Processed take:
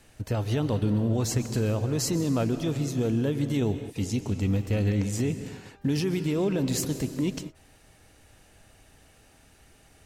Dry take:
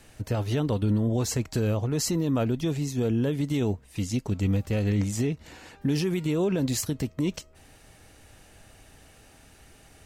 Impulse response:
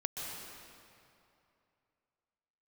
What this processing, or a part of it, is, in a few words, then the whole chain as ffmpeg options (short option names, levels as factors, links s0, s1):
keyed gated reverb: -filter_complex "[0:a]asplit=3[s0][s1][s2];[1:a]atrim=start_sample=2205[s3];[s1][s3]afir=irnorm=-1:irlink=0[s4];[s2]apad=whole_len=443443[s5];[s4][s5]sidechaingate=range=0.0224:threshold=0.00562:ratio=16:detection=peak,volume=0.447[s6];[s0][s6]amix=inputs=2:normalize=0,volume=0.668"